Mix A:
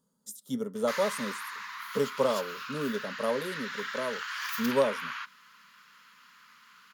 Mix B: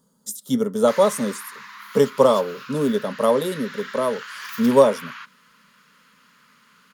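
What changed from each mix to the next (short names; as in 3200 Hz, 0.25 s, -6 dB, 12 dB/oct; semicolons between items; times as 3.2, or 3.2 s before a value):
speech +11.5 dB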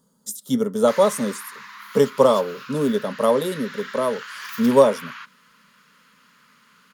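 none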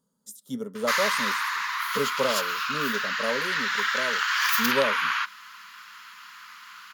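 speech -11.5 dB; background +11.5 dB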